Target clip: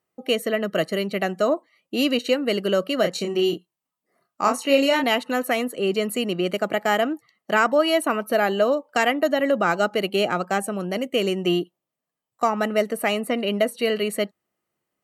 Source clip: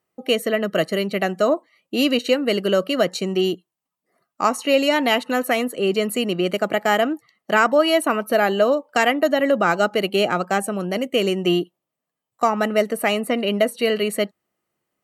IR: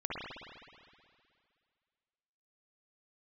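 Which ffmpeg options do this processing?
-filter_complex "[0:a]asettb=1/sr,asplit=3[link_01][link_02][link_03];[link_01]atrim=end=3.014[link_04];[link_02]atrim=start=3.01:end=5.04,asetpts=PTS-STARTPTS,afade=type=in:duration=0.004:curve=qsin,afade=type=out:start_time=2.026:duration=0.004:curve=qsin,asplit=2[link_05][link_06];[link_06]adelay=29,volume=-5dB[link_07];[link_05][link_07]amix=inputs=2:normalize=0,atrim=end_sample=89523[link_08];[link_03]atrim=start=5.036[link_09];[link_04][link_08]acrossfade=duration=0.004:curve1=hsin:curve2=qsin[link_10];[link_10][link_09]acrossfade=duration=0.004:curve1=qsin:curve2=hsin,volume=-2.5dB"

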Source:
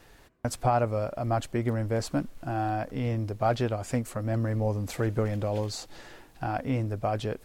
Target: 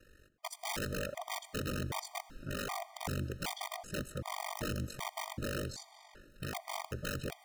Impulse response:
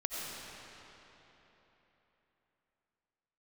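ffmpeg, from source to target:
-filter_complex "[0:a]aeval=exprs='val(0)*sin(2*PI*24*n/s)':channel_layout=same,aeval=exprs='(mod(17.8*val(0)+1,2)-1)/17.8':channel_layout=same,asplit=2[link_01][link_02];[1:a]atrim=start_sample=2205,asetrate=57330,aresample=44100[link_03];[link_02][link_03]afir=irnorm=-1:irlink=0,volume=-16.5dB[link_04];[link_01][link_04]amix=inputs=2:normalize=0,afftfilt=real='re*gt(sin(2*PI*1.3*pts/sr)*(1-2*mod(floor(b*sr/1024/620),2)),0)':imag='im*gt(sin(2*PI*1.3*pts/sr)*(1-2*mod(floor(b*sr/1024/620),2)),0)':win_size=1024:overlap=0.75,volume=-4dB"

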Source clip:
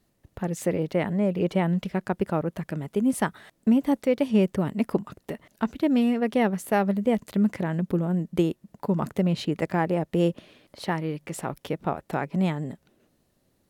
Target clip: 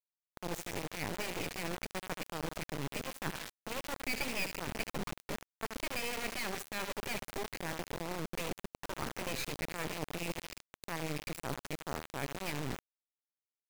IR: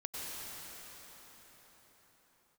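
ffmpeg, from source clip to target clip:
-filter_complex "[0:a]highpass=80,afftfilt=real='re*lt(hypot(re,im),0.316)':imag='im*lt(hypot(re,im),0.316)':win_size=1024:overlap=0.75,asuperstop=centerf=3100:order=8:qfactor=4.1,highshelf=frequency=7900:gain=-7.5,areverse,acompressor=threshold=-39dB:ratio=16,areverse,equalizer=frequency=2400:width=4.8:gain=12.5,asplit=2[link_01][link_02];[link_02]aecho=0:1:76|152|228|304|380|456:0.316|0.171|0.0922|0.0498|0.0269|0.0145[link_03];[link_01][link_03]amix=inputs=2:normalize=0,acrusher=bits=4:dc=4:mix=0:aa=0.000001,volume=5.5dB"

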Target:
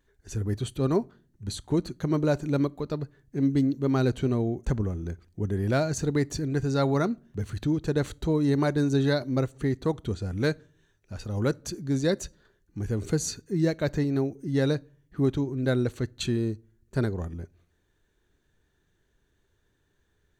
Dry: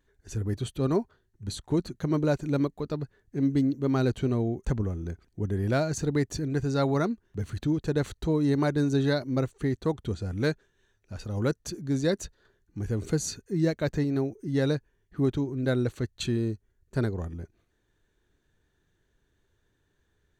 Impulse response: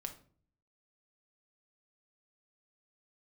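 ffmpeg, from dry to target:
-filter_complex "[0:a]asplit=2[link_01][link_02];[1:a]atrim=start_sample=2205,highshelf=frequency=4200:gain=7[link_03];[link_02][link_03]afir=irnorm=-1:irlink=0,volume=-15dB[link_04];[link_01][link_04]amix=inputs=2:normalize=0"

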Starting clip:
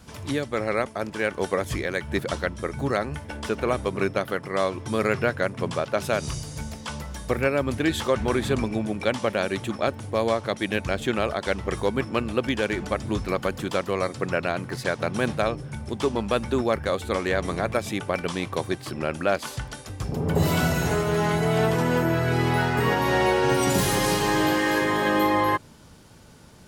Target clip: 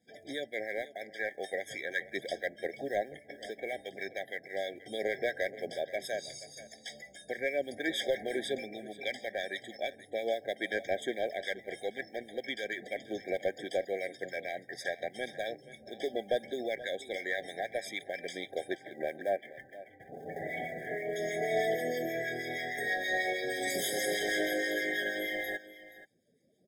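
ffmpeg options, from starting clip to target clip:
ffmpeg -i in.wav -filter_complex "[0:a]asettb=1/sr,asplit=3[link_01][link_02][link_03];[link_01]atrim=end=18.784[link_04];[link_02]atrim=start=18.78:end=21.16,asetpts=PTS-STARTPTS,afade=type=in:duration=0.004:curve=qsin,afade=type=out:start_time=2.376:duration=0.004:curve=qsin,lowpass=frequency=2600:width=0.5412,lowpass=frequency=2600:width=1.3066[link_05];[link_03]atrim=start=21.156[link_06];[link_04][link_05]acrossfade=duration=0.004:curve1=hsin:curve2=qsin[link_07];[link_07][link_06]acrossfade=duration=0.004:curve1=qsin:curve2=hsin,afftdn=noise_reduction=20:noise_floor=-46,highpass=610,aphaser=in_gain=1:out_gain=1:delay=1.1:decay=0.37:speed=0.37:type=sinusoidal,acrusher=bits=7:mode=log:mix=0:aa=0.000001,asoftclip=type=tanh:threshold=-13.5dB,acrossover=split=1400[link_08][link_09];[link_08]aeval=exprs='val(0)*(1-0.5/2+0.5/2*cos(2*PI*6.3*n/s))':channel_layout=same[link_10];[link_09]aeval=exprs='val(0)*(1-0.5/2-0.5/2*cos(2*PI*6.3*n/s))':channel_layout=same[link_11];[link_10][link_11]amix=inputs=2:normalize=0,aecho=1:1:479:0.141,afftfilt=real='re*eq(mod(floor(b*sr/1024/780),2),0)':imag='im*eq(mod(floor(b*sr/1024/780),2),0)':win_size=1024:overlap=0.75,volume=-2dB" out.wav

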